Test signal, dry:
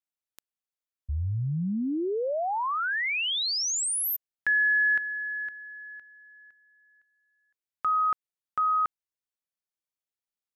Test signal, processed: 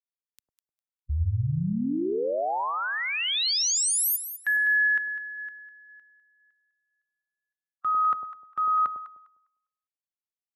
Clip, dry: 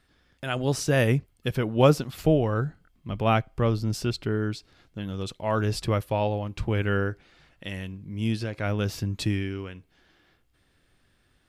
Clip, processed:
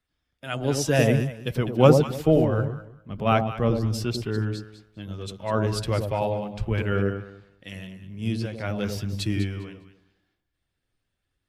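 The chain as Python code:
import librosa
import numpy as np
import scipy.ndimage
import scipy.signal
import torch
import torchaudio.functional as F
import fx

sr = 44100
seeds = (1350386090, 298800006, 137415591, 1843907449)

y = fx.spec_quant(x, sr, step_db=15)
y = fx.echo_alternate(y, sr, ms=101, hz=830.0, feedback_pct=51, wet_db=-4)
y = fx.band_widen(y, sr, depth_pct=40)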